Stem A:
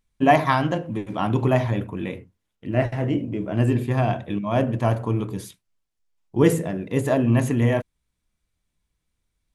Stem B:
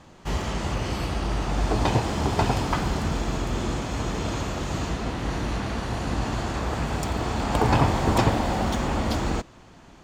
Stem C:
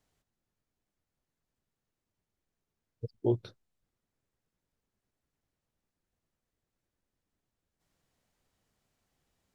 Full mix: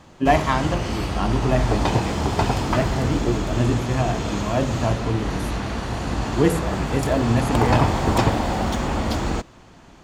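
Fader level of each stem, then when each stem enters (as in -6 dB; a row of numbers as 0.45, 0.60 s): -1.5, +2.0, +3.0 dB; 0.00, 0.00, 0.00 s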